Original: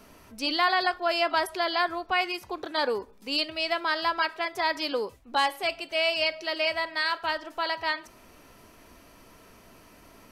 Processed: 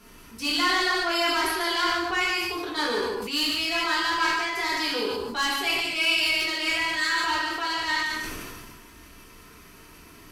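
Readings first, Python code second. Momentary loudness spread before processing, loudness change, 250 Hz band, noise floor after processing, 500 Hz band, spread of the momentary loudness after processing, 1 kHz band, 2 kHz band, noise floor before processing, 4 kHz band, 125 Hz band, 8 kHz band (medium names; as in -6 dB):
6 LU, +3.0 dB, +5.0 dB, -49 dBFS, -2.0 dB, 7 LU, +0.5 dB, +4.5 dB, -54 dBFS, +4.5 dB, no reading, +13.0 dB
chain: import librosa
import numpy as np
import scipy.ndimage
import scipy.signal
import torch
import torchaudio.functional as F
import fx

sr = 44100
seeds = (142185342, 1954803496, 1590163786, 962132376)

p1 = fx.peak_eq(x, sr, hz=620.0, db=-13.0, octaves=0.68)
p2 = fx.tube_stage(p1, sr, drive_db=24.0, bias=0.3)
p3 = p2 + fx.echo_single(p2, sr, ms=146, db=-6.5, dry=0)
p4 = fx.rev_gated(p3, sr, seeds[0], gate_ms=230, shape='falling', drr_db=-5.0)
y = fx.sustainer(p4, sr, db_per_s=27.0)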